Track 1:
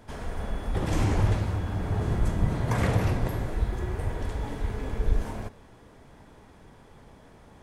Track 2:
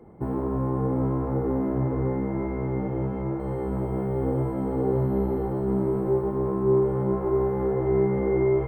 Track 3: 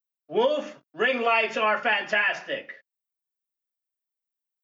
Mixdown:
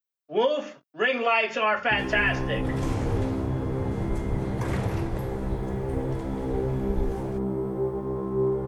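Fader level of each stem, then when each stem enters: −4.5, −4.0, −0.5 decibels; 1.90, 1.70, 0.00 seconds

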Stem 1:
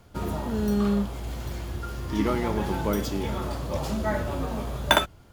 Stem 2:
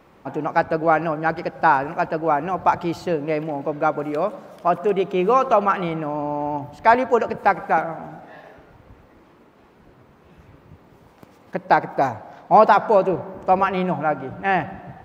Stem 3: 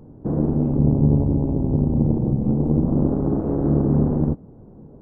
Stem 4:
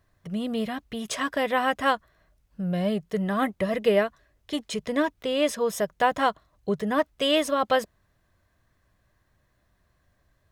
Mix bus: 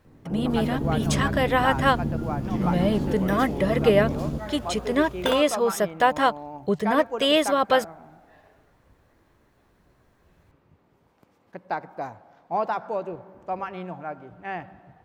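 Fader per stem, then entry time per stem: −9.0, −13.0, −9.0, +2.5 decibels; 0.35, 0.00, 0.05, 0.00 seconds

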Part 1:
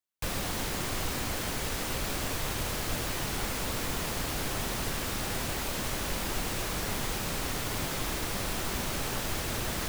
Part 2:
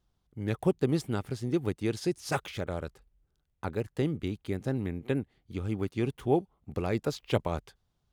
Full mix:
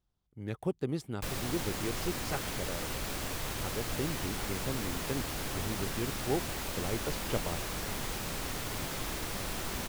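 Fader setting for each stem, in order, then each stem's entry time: −4.0, −6.5 decibels; 1.00, 0.00 seconds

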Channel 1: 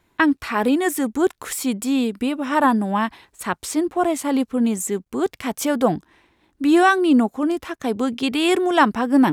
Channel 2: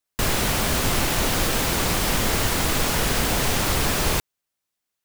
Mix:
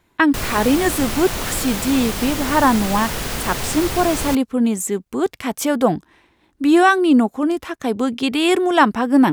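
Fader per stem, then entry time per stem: +2.0, −3.0 decibels; 0.00, 0.15 seconds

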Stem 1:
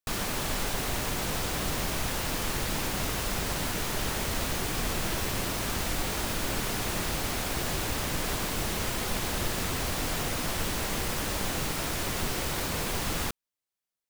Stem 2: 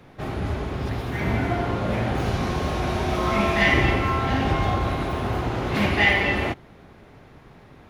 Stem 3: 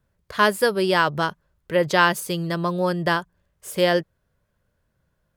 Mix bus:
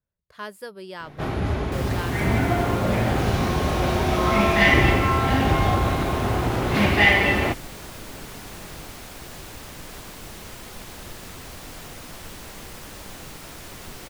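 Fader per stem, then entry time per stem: −8.5, +2.5, −17.5 decibels; 1.65, 1.00, 0.00 seconds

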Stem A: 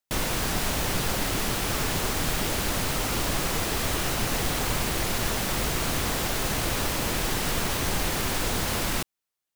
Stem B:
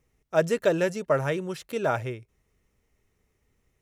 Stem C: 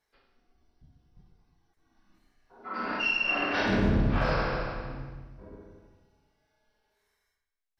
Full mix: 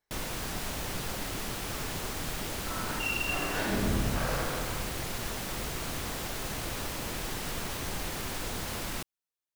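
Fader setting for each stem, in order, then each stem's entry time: −8.5 dB, muted, −5.5 dB; 0.00 s, muted, 0.00 s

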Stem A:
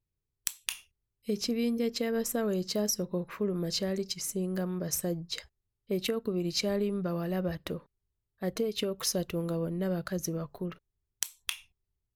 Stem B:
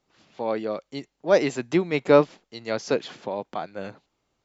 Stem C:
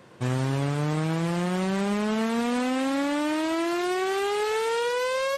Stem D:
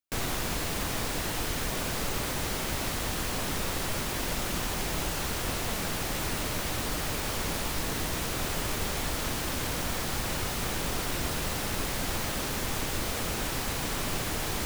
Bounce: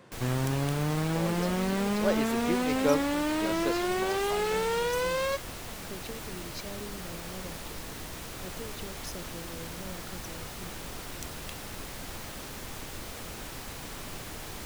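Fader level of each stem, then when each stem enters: −12.5, −10.0, −3.0, −9.0 decibels; 0.00, 0.75, 0.00, 0.00 seconds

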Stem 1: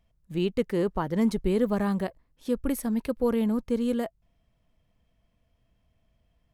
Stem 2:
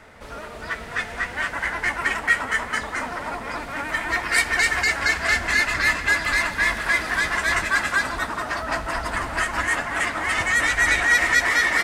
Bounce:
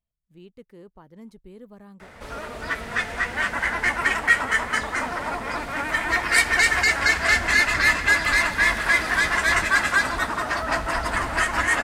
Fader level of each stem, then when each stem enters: −20.0, +1.5 decibels; 0.00, 2.00 seconds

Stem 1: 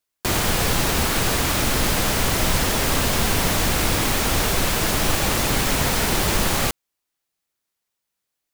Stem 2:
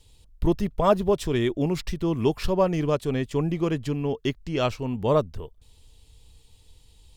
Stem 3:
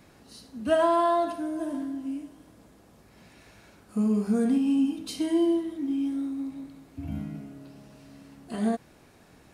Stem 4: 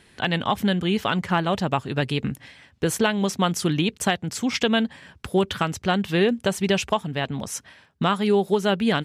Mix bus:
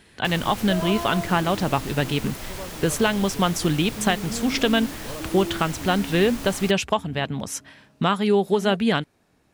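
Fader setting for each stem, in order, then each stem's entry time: −15.5, −16.5, −8.5, +0.5 decibels; 0.00, 0.00, 0.00, 0.00 seconds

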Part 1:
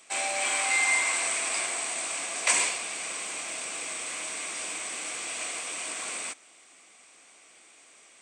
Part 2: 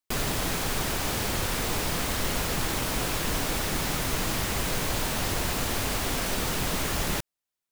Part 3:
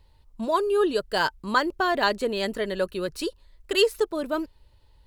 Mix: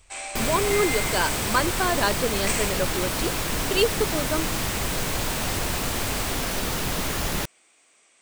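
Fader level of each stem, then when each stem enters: −5.0, +1.5, −1.0 decibels; 0.00, 0.25, 0.00 seconds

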